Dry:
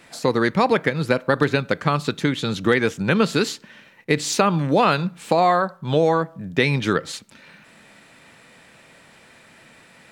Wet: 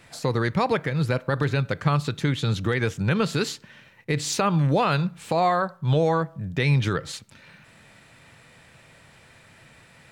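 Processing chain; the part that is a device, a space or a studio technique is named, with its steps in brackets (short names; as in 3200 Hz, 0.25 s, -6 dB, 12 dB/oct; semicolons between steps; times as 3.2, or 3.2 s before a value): car stereo with a boomy subwoofer (resonant low shelf 160 Hz +8 dB, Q 1.5; limiter -9.5 dBFS, peak gain reduction 6.5 dB); gain -3 dB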